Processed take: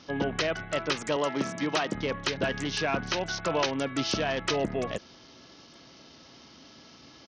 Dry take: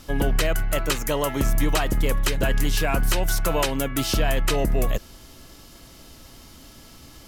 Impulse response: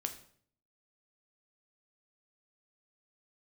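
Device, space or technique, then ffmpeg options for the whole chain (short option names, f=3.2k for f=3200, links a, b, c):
Bluetooth headset: -filter_complex "[0:a]asettb=1/sr,asplit=3[a][b][c];[a]atrim=end=1.164[d];[b]atrim=start=1.16:end=1.95,asetpts=PTS-STARTPTS,afade=t=in:d=0.004:c=qsin,afade=t=out:st=0.786:d=0.004:c=qsin,highpass=f=140:w=0.5412,highpass=f=140:w=1.3066[e];[c]atrim=start=1.946[f];[d][e]acrossfade=d=0.004:c1=hsin:c2=qsin[g];[g][f]acrossfade=d=0.004:c1=qsin:c2=hsin,highpass=160,aresample=16000,aresample=44100,volume=-3dB" -ar 48000 -c:a sbc -b:a 64k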